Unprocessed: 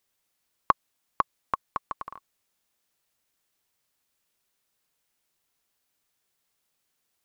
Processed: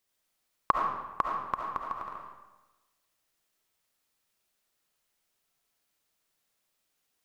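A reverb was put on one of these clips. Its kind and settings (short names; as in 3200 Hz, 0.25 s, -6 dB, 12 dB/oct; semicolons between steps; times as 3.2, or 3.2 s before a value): digital reverb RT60 1.1 s, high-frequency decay 0.8×, pre-delay 30 ms, DRR -0.5 dB; gain -3.5 dB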